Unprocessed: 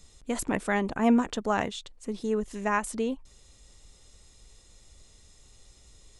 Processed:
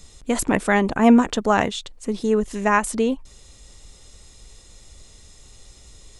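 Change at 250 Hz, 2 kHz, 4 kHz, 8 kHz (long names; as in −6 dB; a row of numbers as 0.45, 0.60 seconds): +8.5, +8.5, +8.5, +8.5 decibels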